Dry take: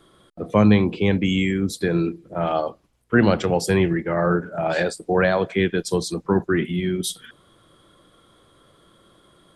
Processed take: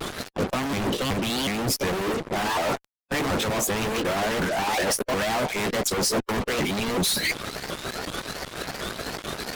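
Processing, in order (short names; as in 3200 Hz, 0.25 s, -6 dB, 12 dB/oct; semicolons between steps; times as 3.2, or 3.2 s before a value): repeated pitch sweeps +6 st, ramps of 0.367 s; reverse; compressor 8:1, threshold -34 dBFS, peak gain reduction 22.5 dB; reverse; high shelf 8000 Hz -8 dB; fuzz box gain 57 dB, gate -56 dBFS; harmonic-percussive split harmonic -8 dB; vibrato 0.83 Hz 46 cents; gain -7 dB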